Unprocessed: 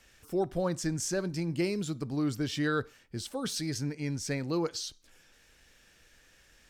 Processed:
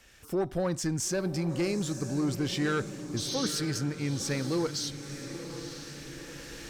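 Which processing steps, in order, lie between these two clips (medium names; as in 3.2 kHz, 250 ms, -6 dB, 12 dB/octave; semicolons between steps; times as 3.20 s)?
recorder AGC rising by 6.6 dB/s; valve stage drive 25 dB, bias 0.2; spectral replace 3.20–3.47 s, 2.3–6.5 kHz after; on a send: echo that smears into a reverb 958 ms, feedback 55%, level -10 dB; on the sum: trim +3 dB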